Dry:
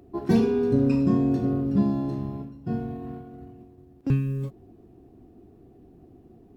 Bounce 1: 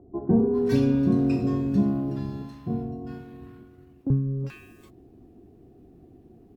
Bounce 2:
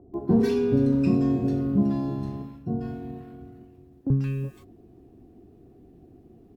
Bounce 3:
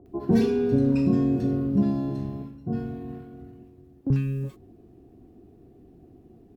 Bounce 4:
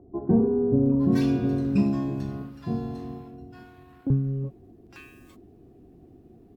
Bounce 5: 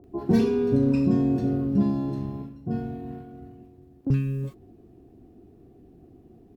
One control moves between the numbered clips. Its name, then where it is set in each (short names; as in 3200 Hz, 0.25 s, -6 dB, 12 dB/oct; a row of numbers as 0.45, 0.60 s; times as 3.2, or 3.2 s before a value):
bands offset in time, time: 400, 140, 60, 860, 40 ms